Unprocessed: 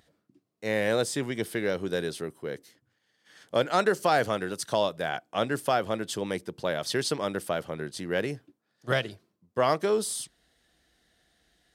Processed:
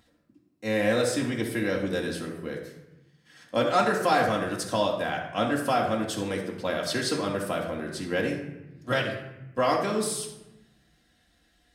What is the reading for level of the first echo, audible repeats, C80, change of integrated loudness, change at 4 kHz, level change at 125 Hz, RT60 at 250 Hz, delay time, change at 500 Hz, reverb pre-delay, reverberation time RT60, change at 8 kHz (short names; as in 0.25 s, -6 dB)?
none, none, 8.0 dB, +1.5 dB, +1.0 dB, +2.0 dB, 1.5 s, none, +0.5 dB, 3 ms, 1.0 s, +0.5 dB